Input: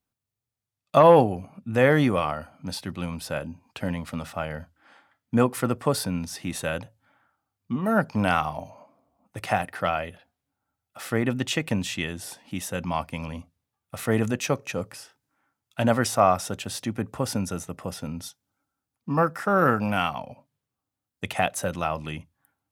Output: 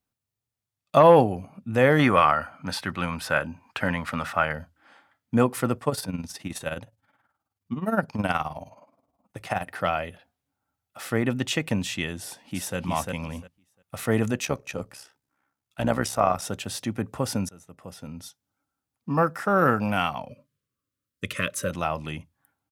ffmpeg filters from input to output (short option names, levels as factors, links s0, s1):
-filter_complex "[0:a]asettb=1/sr,asplit=3[s0][s1][s2];[s0]atrim=end=1.994[s3];[s1]atrim=start=1.99:end=4.53,asetpts=PTS-STARTPTS,afade=t=in:d=0.004:c=qsin,afade=t=out:st=2.536:d=0.004:c=qsin,equalizer=f=1500:w=0.81:g=12.5[s4];[s2]atrim=start=4.526[s5];[s3][s4]acrossfade=d=0.004:c1=hsin:c2=qsin[s6];[s6][s5]acrossfade=d=0.004:c1=qsin:c2=hsin,asettb=1/sr,asplit=3[s7][s8][s9];[s7]atrim=end=5.784[s10];[s8]atrim=start=5.78:end=9.67,asetpts=PTS-STARTPTS,afade=t=in:d=0.004:c=qsin,afade=t=out:st=3.886:d=0.004:c=qsin,tremolo=f=19:d=0.71[s11];[s9]atrim=start=9.666[s12];[s10][s11]acrossfade=d=0.004:c1=hsin:c2=qsin[s13];[s13][s12]acrossfade=d=0.004:c1=qsin:c2=hsin,asplit=2[s14][s15];[s15]afade=t=in:st=12.19:d=0.01,afade=t=out:st=12.77:d=0.01,aecho=0:1:350|700|1050:0.749894|0.112484|0.0168726[s16];[s14][s16]amix=inputs=2:normalize=0,asettb=1/sr,asplit=3[s17][s18][s19];[s17]atrim=end=14.454[s20];[s18]atrim=start=14.45:end=16.42,asetpts=PTS-STARTPTS,afade=t=in:d=0.004:c=qsin,afade=t=out:st=1.966:d=0.004:c=qsin,tremolo=f=66:d=0.667[s21];[s19]atrim=start=16.416[s22];[s20][s21]acrossfade=d=0.004:c1=hsin:c2=qsin[s23];[s23][s22]acrossfade=d=0.004:c1=qsin:c2=hsin,asettb=1/sr,asplit=3[s24][s25][s26];[s24]atrim=end=20.294[s27];[s25]atrim=start=20.29:end=21.7,asetpts=PTS-STARTPTS,afade=t=in:d=0.004:c=qsin,afade=t=out:st=1.406:d=0.004:c=qsin,asuperstop=centerf=790:order=12:qfactor=1.9[s28];[s26]atrim=start=21.696[s29];[s27][s28]acrossfade=d=0.004:c1=hsin:c2=qsin[s30];[s30][s29]acrossfade=d=0.004:c1=qsin:c2=hsin,asplit=2[s31][s32];[s31]atrim=end=17.49,asetpts=PTS-STARTPTS,afade=t=out:st=17.486:d=0.004:c=hsin:silence=0.0749894[s33];[s32]atrim=start=17.49,asetpts=PTS-STARTPTS,afade=t=in:d=1.84:c=qsin:silence=0.0749894[s34];[s33][s34]concat=n=2:v=0:a=1"